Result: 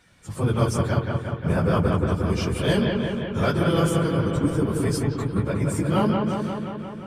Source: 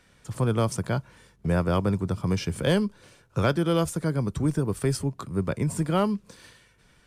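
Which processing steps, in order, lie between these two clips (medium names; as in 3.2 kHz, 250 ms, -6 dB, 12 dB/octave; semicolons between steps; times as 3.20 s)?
phase randomisation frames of 50 ms; in parallel at -7.5 dB: saturation -18 dBFS, distortion -16 dB; on the sum: bucket-brigade echo 177 ms, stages 4096, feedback 71%, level -3.5 dB; trim -1.5 dB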